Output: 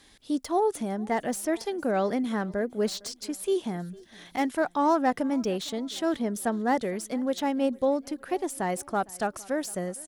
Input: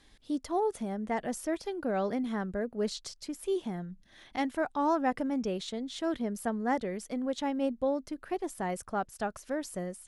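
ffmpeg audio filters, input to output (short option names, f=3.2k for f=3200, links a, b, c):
-filter_complex "[0:a]highshelf=f=6.2k:g=6.5,acrossover=split=1300[a][b];[b]asoftclip=type=hard:threshold=-37dB[c];[a][c]amix=inputs=2:normalize=0,lowshelf=f=66:g=-12,aecho=1:1:457|914|1371:0.0631|0.0322|0.0164,volume=5dB"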